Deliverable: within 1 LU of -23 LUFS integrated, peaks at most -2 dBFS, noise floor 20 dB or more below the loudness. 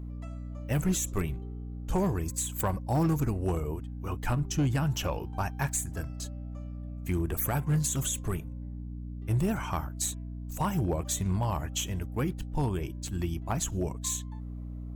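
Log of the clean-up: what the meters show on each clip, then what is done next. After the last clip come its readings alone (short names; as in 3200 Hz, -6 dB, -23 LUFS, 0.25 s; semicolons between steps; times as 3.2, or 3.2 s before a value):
clipped 0.6%; flat tops at -20.5 dBFS; hum 60 Hz; harmonics up to 300 Hz; hum level -36 dBFS; loudness -31.5 LUFS; peak -20.5 dBFS; loudness target -23.0 LUFS
-> clip repair -20.5 dBFS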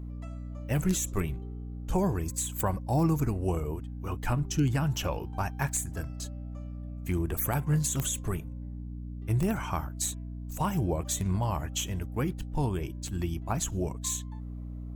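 clipped 0.0%; hum 60 Hz; harmonics up to 300 Hz; hum level -36 dBFS
-> notches 60/120/180/240/300 Hz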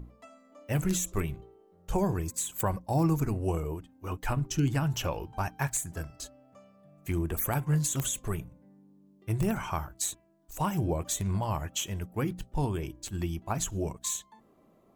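hum none; loudness -31.5 LUFS; peak -12.5 dBFS; loudness target -23.0 LUFS
-> gain +8.5 dB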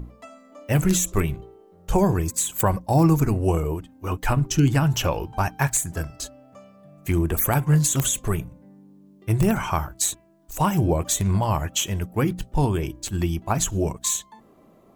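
loudness -23.0 LUFS; peak -4.0 dBFS; noise floor -54 dBFS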